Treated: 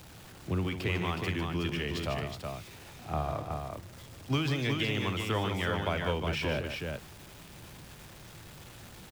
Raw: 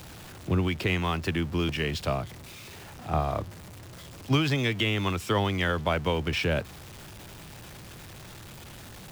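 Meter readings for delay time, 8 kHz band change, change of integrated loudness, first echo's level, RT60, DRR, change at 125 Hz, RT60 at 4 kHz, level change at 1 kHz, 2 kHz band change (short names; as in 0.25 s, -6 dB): 53 ms, -4.0 dB, -5.0 dB, -16.0 dB, none, none, -4.0 dB, none, -4.0 dB, -4.0 dB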